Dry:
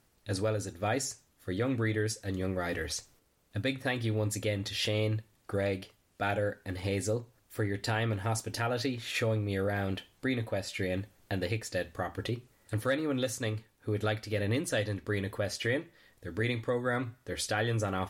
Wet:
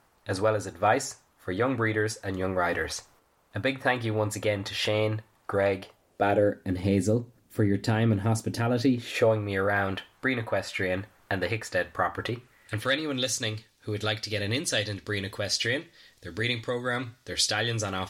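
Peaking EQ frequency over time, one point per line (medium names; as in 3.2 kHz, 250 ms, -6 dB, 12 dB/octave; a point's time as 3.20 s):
peaking EQ +13 dB 1.9 oct
5.77 s 1 kHz
6.68 s 210 Hz
8.93 s 210 Hz
9.41 s 1.2 kHz
12.32 s 1.2 kHz
13.12 s 4.7 kHz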